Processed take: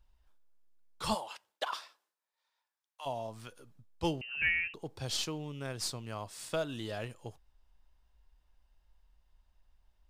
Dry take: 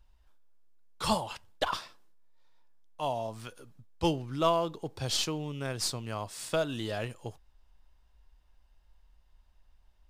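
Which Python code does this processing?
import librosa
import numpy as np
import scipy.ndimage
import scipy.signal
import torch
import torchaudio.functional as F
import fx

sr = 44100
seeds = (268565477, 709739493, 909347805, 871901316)

y = fx.highpass(x, sr, hz=fx.line((1.14, 380.0), (3.05, 1200.0)), slope=12, at=(1.14, 3.05), fade=0.02)
y = fx.freq_invert(y, sr, carrier_hz=2900, at=(4.21, 4.74))
y = F.gain(torch.from_numpy(y), -4.5).numpy()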